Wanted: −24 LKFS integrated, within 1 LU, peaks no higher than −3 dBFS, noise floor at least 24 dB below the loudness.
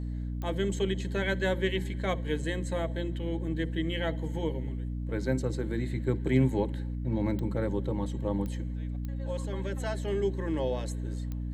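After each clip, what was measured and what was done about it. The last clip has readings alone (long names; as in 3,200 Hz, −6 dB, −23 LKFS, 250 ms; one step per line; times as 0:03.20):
number of clicks 5; mains hum 60 Hz; hum harmonics up to 300 Hz; level of the hum −31 dBFS; integrated loudness −31.5 LKFS; sample peak −12.5 dBFS; target loudness −24.0 LKFS
→ click removal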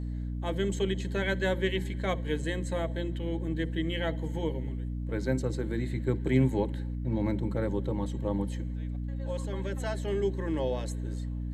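number of clicks 0; mains hum 60 Hz; hum harmonics up to 300 Hz; level of the hum −31 dBFS
→ mains-hum notches 60/120/180/240/300 Hz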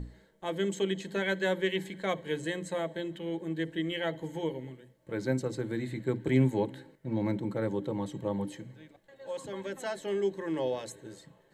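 mains hum none found; integrated loudness −33.0 LKFS; sample peak −13.5 dBFS; target loudness −24.0 LKFS
→ level +9 dB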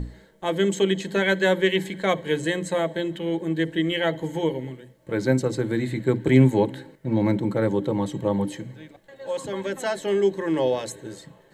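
integrated loudness −24.0 LKFS; sample peak −4.5 dBFS; background noise floor −55 dBFS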